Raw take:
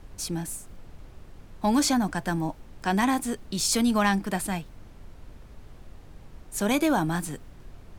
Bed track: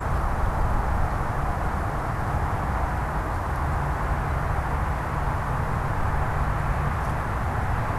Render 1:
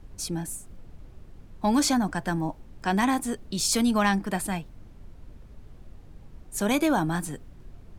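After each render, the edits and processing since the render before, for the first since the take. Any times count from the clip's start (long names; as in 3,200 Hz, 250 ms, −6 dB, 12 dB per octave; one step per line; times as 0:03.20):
broadband denoise 6 dB, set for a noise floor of −49 dBFS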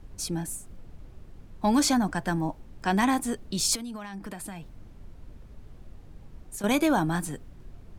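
0:03.75–0:06.64: downward compressor 20 to 1, threshold −33 dBFS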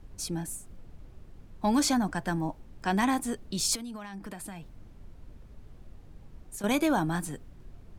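level −2.5 dB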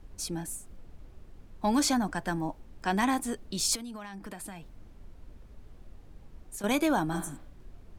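0:07.16–0:07.48: healed spectral selection 300–5,400 Hz both
parametric band 130 Hz −4.5 dB 1.2 octaves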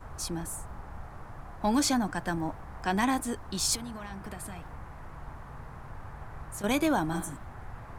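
mix in bed track −19.5 dB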